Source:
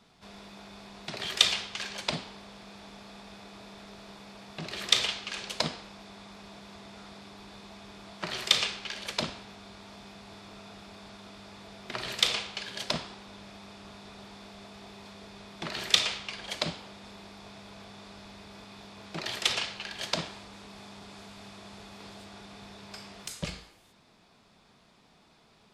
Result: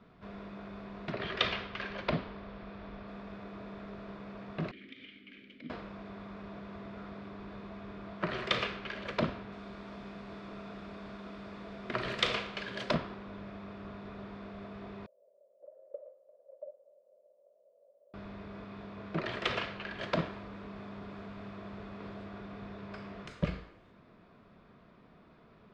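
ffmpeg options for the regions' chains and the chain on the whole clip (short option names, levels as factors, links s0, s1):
-filter_complex "[0:a]asettb=1/sr,asplit=3[s0][s1][s2];[s0]atrim=end=1.124[s3];[s1]atrim=start=1.12:end=3.08,asetpts=PTS-STARTPTS,afade=t=in:d=0.004:c=qsin,afade=t=out:st=1.956:d=0.004:c=qsin,lowpass=f=5600:w=0.5412,lowpass=f=5600:w=1.3066,asubboost=boost=3.5:cutoff=95[s4];[s2]atrim=start=3.076[s5];[s3][s4]acrossfade=d=0.004:c1=hsin:c2=qsin[s6];[s6][s5]acrossfade=d=0.004:c1=qsin:c2=hsin,asettb=1/sr,asplit=3[s7][s8][s9];[s7]atrim=end=4.714[s10];[s8]atrim=start=4.71:end=5.7,asetpts=PTS-STARTPTS,afade=t=in:d=0.004:c=qsin,afade=t=out:st=0.986:d=0.004:c=qsin,lowshelf=f=71:g=10,acompressor=threshold=0.0316:ratio=3:attack=3.2:release=140:knee=1:detection=peak,asplit=3[s11][s12][s13];[s11]bandpass=f=270:t=q:w=8,volume=1[s14];[s12]bandpass=f=2290:t=q:w=8,volume=0.501[s15];[s13]bandpass=f=3010:t=q:w=8,volume=0.355[s16];[s14][s15][s16]amix=inputs=3:normalize=0[s17];[s9]atrim=start=5.696[s18];[s10][s17]acrossfade=d=0.004:c1=hsin:c2=qsin[s19];[s19][s18]acrossfade=d=0.004:c1=qsin:c2=hsin,asettb=1/sr,asplit=3[s20][s21][s22];[s20]atrim=end=9.524[s23];[s21]atrim=start=9.52:end=12.95,asetpts=PTS-STARTPTS,afade=t=in:d=0.004:c=qsin,afade=t=out:st=3.426:d=0.004:c=qsin,aemphasis=mode=production:type=50kf,bandreject=f=50:t=h:w=6,bandreject=f=100:t=h:w=6,bandreject=f=150:t=h:w=6[s24];[s22]atrim=start=12.946[s25];[s23][s24]acrossfade=d=0.004:c1=hsin:c2=qsin[s26];[s26][s25]acrossfade=d=0.004:c1=qsin:c2=hsin,asettb=1/sr,asplit=3[s27][s28][s29];[s27]atrim=end=15.064[s30];[s28]atrim=start=15.06:end=18.14,asetpts=PTS-STARTPTS,afade=t=in:d=0.004:c=qsin,afade=t=out:st=3.076:d=0.004:c=qsin,aeval=exprs='max(val(0),0)':c=same,asuperpass=centerf=560:order=4:qfactor=7[s31];[s29]atrim=start=18.136[s32];[s30][s31]acrossfade=d=0.004:c1=hsin:c2=qsin[s33];[s33][s32]acrossfade=d=0.004:c1=qsin:c2=hsin,lowpass=1500,equalizer=f=830:t=o:w=0.28:g=-11.5,volume=1.78"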